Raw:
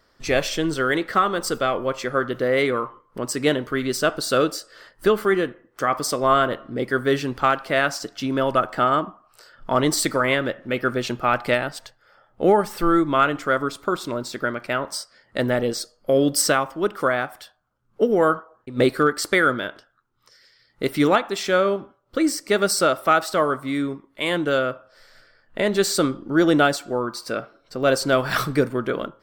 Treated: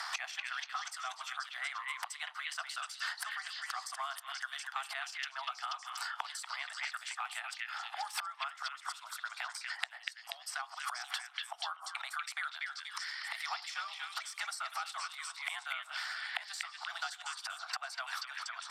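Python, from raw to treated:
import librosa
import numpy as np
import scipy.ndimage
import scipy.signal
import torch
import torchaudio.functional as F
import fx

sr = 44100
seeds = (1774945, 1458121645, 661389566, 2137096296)

p1 = scipy.signal.sosfilt(scipy.signal.butter(4, 12000.0, 'lowpass', fs=sr, output='sos'), x)
p2 = fx.gate_flip(p1, sr, shuts_db=-24.0, range_db=-27)
p3 = fx.stretch_grains(p2, sr, factor=0.64, grain_ms=27.0)
p4 = scipy.signal.sosfilt(scipy.signal.butter(16, 730.0, 'highpass', fs=sr, output='sos'), p3)
p5 = p4 + fx.echo_stepped(p4, sr, ms=241, hz=2500.0, octaves=0.7, feedback_pct=70, wet_db=-0.5, dry=0)
p6 = fx.band_squash(p5, sr, depth_pct=100)
y = F.gain(torch.from_numpy(p6), 10.5).numpy()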